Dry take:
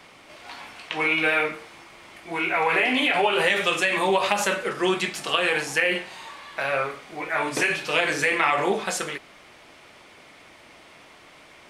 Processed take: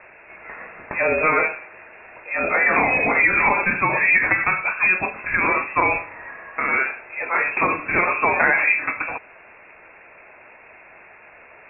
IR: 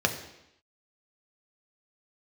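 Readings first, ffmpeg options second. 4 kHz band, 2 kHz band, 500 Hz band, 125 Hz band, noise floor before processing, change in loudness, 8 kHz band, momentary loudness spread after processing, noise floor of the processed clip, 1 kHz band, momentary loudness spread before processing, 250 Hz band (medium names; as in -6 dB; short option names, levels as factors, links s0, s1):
under -35 dB, +5.5 dB, -0.5 dB, +3.0 dB, -50 dBFS, +4.0 dB, under -40 dB, 15 LU, -47 dBFS, +4.0 dB, 15 LU, -0.5 dB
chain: -af "lowpass=f=2400:t=q:w=0.5098,lowpass=f=2400:t=q:w=0.6013,lowpass=f=2400:t=q:w=0.9,lowpass=f=2400:t=q:w=2.563,afreqshift=-2800,volume=1.68"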